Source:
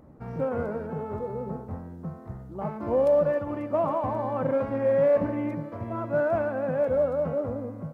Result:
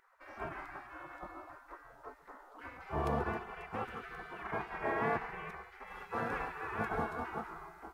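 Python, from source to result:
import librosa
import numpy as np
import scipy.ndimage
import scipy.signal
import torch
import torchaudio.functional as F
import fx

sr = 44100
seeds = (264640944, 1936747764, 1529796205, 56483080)

y = fx.spec_gate(x, sr, threshold_db=-25, keep='weak')
y = fx.high_shelf(y, sr, hz=2500.0, db=fx.steps((0.0, -10.0), (5.86, -5.0)))
y = y + 10.0 ** (-18.5 / 20.0) * np.pad(y, (int(135 * sr / 1000.0), 0))[:len(y)]
y = y * librosa.db_to_amplitude(8.0)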